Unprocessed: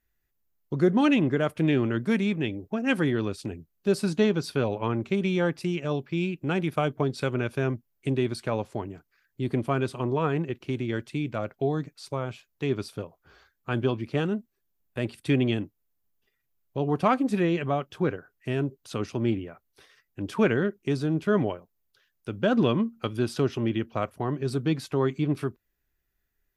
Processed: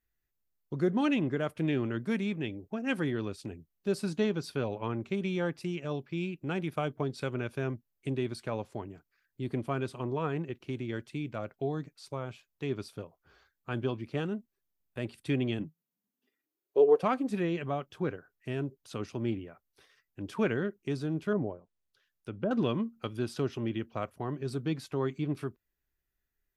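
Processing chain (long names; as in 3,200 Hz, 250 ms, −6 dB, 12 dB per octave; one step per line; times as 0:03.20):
0:15.59–0:17.02: high-pass with resonance 140 Hz → 510 Hz, resonance Q 7.4
0:21.32–0:22.51: treble cut that deepens with the level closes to 740 Hz, closed at −24.5 dBFS
level −6.5 dB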